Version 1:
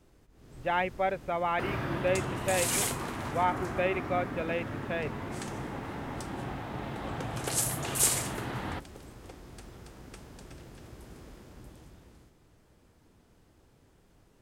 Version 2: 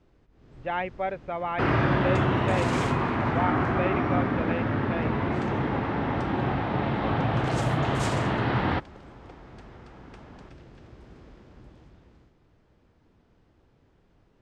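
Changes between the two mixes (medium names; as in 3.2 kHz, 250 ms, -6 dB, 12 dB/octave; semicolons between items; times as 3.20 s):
first sound +11.5 dB; master: add distance through air 160 m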